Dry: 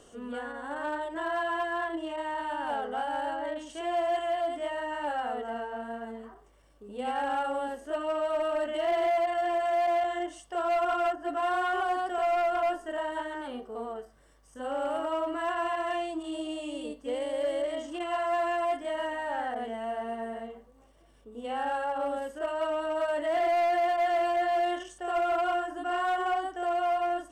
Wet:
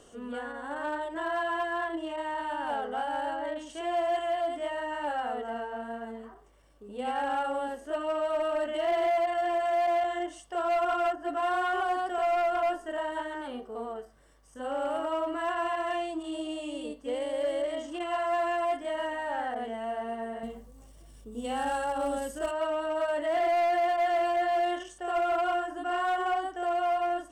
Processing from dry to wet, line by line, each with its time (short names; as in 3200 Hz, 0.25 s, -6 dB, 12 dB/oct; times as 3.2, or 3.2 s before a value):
20.43–22.51 tone controls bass +11 dB, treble +13 dB